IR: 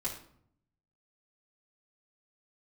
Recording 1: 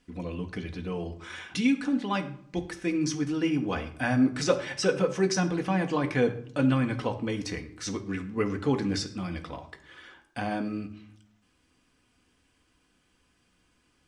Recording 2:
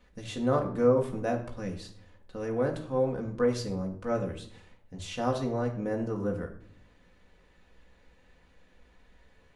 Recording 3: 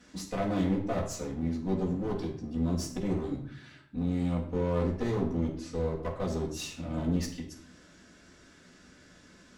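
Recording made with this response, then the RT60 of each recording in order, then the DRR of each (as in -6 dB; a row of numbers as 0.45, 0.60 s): 3; 0.65, 0.65, 0.65 s; 4.5, 0.5, -6.0 dB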